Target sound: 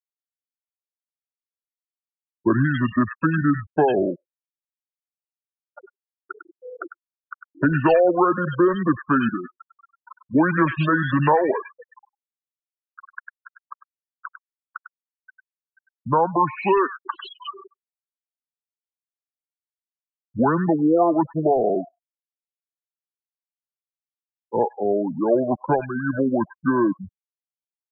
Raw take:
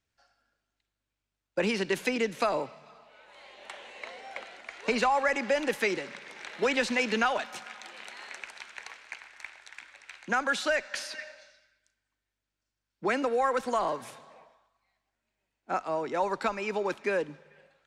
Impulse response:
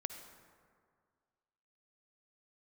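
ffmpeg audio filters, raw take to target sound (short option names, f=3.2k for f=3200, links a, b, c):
-filter_complex "[0:a]asetrate=28224,aresample=44100,afftfilt=real='re*gte(hypot(re,im),0.0501)':imag='im*gte(hypot(re,im),0.0501)':win_size=1024:overlap=0.75,acrossover=split=1800[a][b];[b]adelay=100[c];[a][c]amix=inputs=2:normalize=0,volume=9dB"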